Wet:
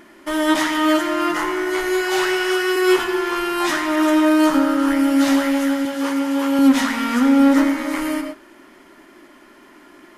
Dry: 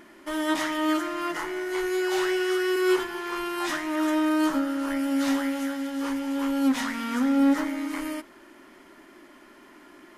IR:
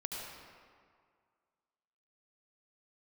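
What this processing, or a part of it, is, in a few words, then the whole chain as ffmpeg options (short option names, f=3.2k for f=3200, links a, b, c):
keyed gated reverb: -filter_complex "[0:a]asettb=1/sr,asplit=3[a][b][c];[a]atrim=end=5.854[d];[b]atrim=start=5.85:end=6.59,asetpts=PTS-STARTPTS,afade=t=in:d=0.004:c=qsin,afade=t=out:st=0.736:d=0.004:c=qsin,highpass=170[e];[c]atrim=start=6.586[f];[d][e]acrossfade=d=0.004:c1=hsin:c2=qsin[g];[g][f]acrossfade=d=0.004:c1=qsin:c2=hsin,asplit=3[h][i][j];[1:a]atrim=start_sample=2205[k];[i][k]afir=irnorm=-1:irlink=0[l];[j]apad=whole_len=448633[m];[l][m]sidechaingate=range=-33dB:threshold=-46dB:ratio=16:detection=peak,volume=-1.5dB[n];[h][n]amix=inputs=2:normalize=0,volume=4dB"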